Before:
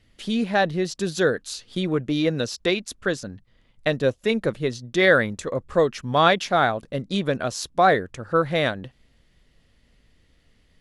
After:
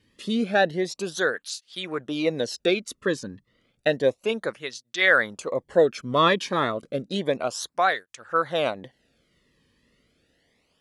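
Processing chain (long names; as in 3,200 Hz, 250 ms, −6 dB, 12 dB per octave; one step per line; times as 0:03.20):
through-zero flanger with one copy inverted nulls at 0.31 Hz, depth 1.5 ms
level +1.5 dB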